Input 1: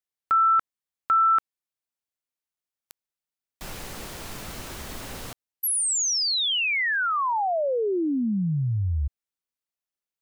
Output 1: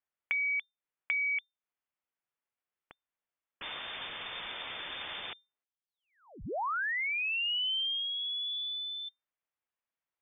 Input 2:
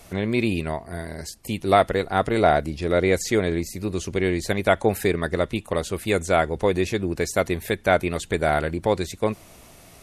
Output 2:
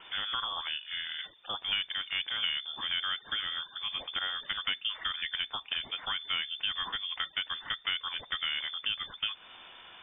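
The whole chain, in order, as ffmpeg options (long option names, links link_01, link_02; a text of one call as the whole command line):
ffmpeg -i in.wav -filter_complex "[0:a]tiltshelf=frequency=970:gain=-5,acrossover=split=150|470[link_01][link_02][link_03];[link_01]acompressor=threshold=-42dB:ratio=6[link_04];[link_02]acompressor=threshold=-42dB:ratio=3[link_05];[link_03]acompressor=threshold=-34dB:ratio=4[link_06];[link_04][link_05][link_06]amix=inputs=3:normalize=0,lowpass=frequency=3100:width_type=q:width=0.5098,lowpass=frequency=3100:width_type=q:width=0.6013,lowpass=frequency=3100:width_type=q:width=0.9,lowpass=frequency=3100:width_type=q:width=2.563,afreqshift=-3600" out.wav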